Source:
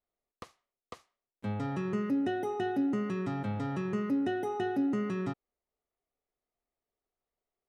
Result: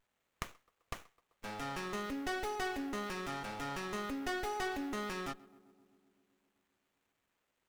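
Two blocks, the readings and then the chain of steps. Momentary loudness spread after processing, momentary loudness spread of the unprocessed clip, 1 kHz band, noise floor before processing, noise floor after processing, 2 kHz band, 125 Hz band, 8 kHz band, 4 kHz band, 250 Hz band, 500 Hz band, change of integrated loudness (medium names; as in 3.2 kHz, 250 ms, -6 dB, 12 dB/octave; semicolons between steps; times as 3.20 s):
12 LU, 13 LU, -1.5 dB, under -85 dBFS, -83 dBFS, +2.5 dB, -13.0 dB, no reading, +5.5 dB, -11.0 dB, -7.0 dB, -7.0 dB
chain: differentiator; vibrato 0.9 Hz 22 cents; on a send: filtered feedback delay 129 ms, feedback 76%, low-pass 1.4 kHz, level -20 dB; on the sum: sliding maximum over 9 samples; trim +17 dB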